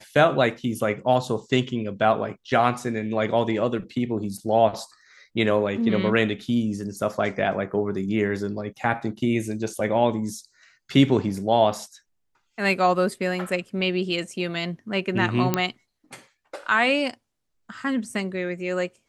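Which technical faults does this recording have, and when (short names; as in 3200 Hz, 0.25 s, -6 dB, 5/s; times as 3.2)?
15.54 pop -6 dBFS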